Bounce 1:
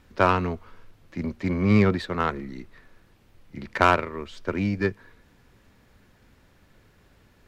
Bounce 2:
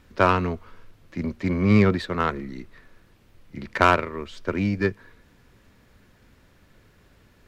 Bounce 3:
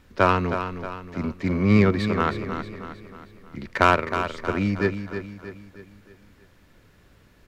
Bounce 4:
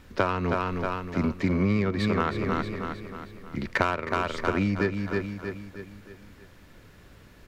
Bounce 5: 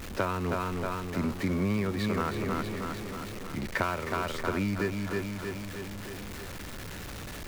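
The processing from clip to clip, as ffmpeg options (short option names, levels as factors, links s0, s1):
-af "equalizer=f=810:t=o:w=0.29:g=-3,volume=1.19"
-af "aecho=1:1:315|630|945|1260|1575:0.355|0.167|0.0784|0.0368|0.0173"
-af "acompressor=threshold=0.0631:ratio=16,volume=1.58"
-af "aeval=exprs='val(0)+0.5*0.0355*sgn(val(0))':c=same,volume=0.501"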